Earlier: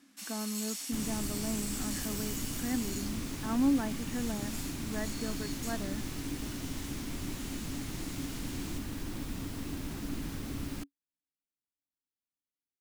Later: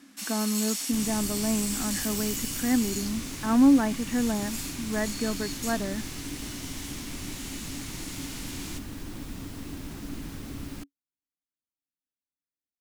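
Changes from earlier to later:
speech +9.0 dB
first sound +7.5 dB

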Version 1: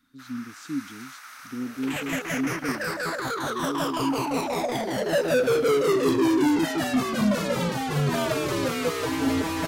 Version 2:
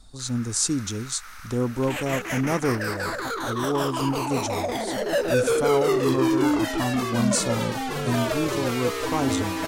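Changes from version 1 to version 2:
speech: remove formant filter i
master: add parametric band 150 Hz −10 dB 0.42 octaves

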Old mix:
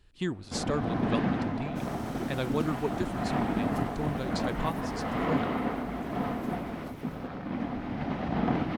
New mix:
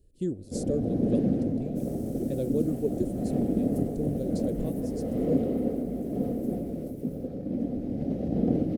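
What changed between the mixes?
first sound: send +6.5 dB
master: add drawn EQ curve 160 Hz 0 dB, 540 Hz +4 dB, 990 Hz −29 dB, 3,500 Hz −17 dB, 9,700 Hz +3 dB

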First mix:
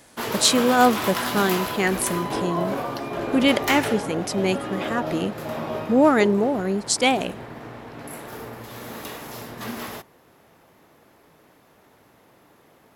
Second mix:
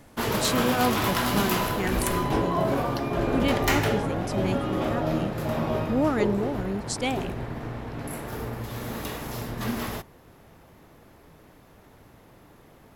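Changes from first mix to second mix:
speech −10.0 dB
master: remove high-pass filter 290 Hz 6 dB per octave

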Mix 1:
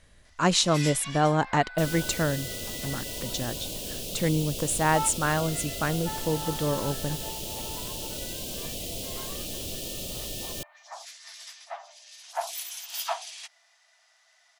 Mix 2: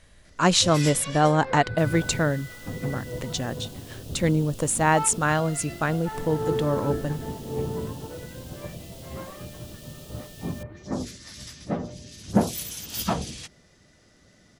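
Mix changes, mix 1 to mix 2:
speech +3.0 dB
first sound: remove Chebyshev high-pass with heavy ripple 650 Hz, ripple 3 dB
second sound −12.0 dB

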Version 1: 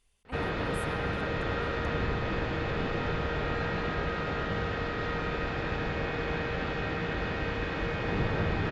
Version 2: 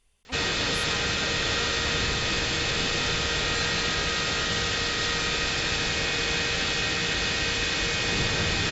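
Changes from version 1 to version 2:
speech +3.5 dB
background: remove low-pass filter 1,300 Hz 12 dB per octave

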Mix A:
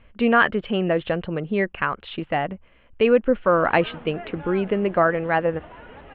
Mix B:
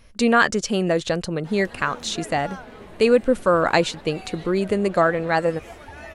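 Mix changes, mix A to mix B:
background: entry −2.00 s
master: remove elliptic low-pass filter 3,100 Hz, stop band 50 dB

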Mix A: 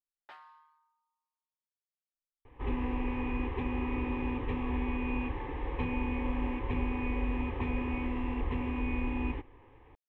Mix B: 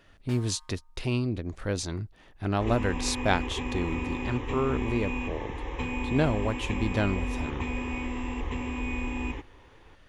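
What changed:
speech: unmuted
master: remove high-frequency loss of the air 380 metres

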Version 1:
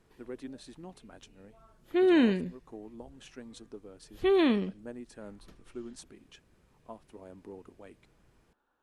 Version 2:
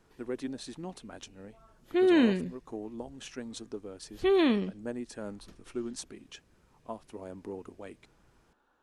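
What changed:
speech +6.0 dB
master: add parametric band 5,900 Hz +3.5 dB 0.89 octaves

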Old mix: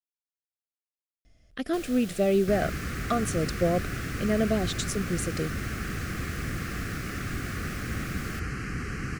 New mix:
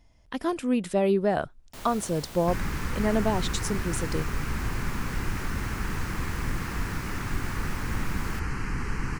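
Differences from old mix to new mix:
speech: entry −1.25 s
second sound: remove high-pass filter 58 Hz
master: remove Butterworth band-reject 930 Hz, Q 2.3

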